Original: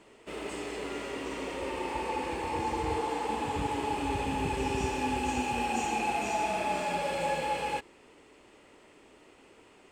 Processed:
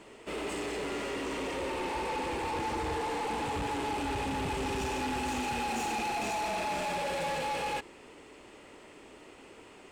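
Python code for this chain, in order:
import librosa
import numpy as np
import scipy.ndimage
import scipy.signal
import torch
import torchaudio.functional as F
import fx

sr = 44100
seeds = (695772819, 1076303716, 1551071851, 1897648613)

y = 10.0 ** (-35.5 / 20.0) * np.tanh(x / 10.0 ** (-35.5 / 20.0))
y = y * librosa.db_to_amplitude(5.0)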